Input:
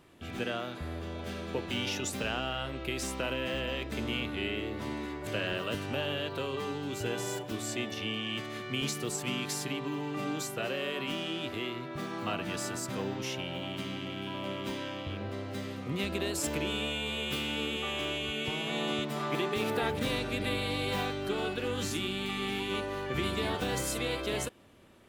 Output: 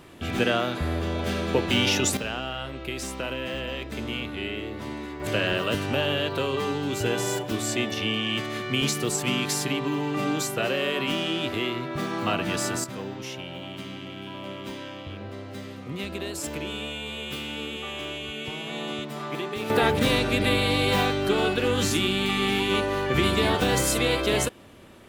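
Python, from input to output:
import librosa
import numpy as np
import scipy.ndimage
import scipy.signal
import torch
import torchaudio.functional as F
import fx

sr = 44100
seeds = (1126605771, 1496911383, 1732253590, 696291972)

y = fx.gain(x, sr, db=fx.steps((0.0, 11.0), (2.17, 2.0), (5.2, 8.0), (12.84, 0.0), (19.7, 9.5)))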